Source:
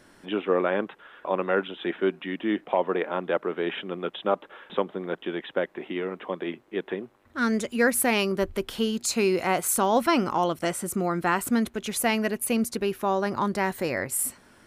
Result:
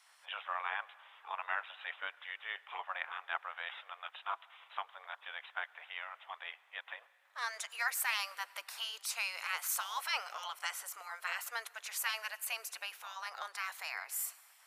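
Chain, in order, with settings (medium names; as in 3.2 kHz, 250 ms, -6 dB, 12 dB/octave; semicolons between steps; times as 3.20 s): spectral gate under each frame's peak -10 dB weak; high-pass 810 Hz 24 dB/octave; on a send: reverberation RT60 2.6 s, pre-delay 88 ms, DRR 21.5 dB; on the sum: trim -4 dB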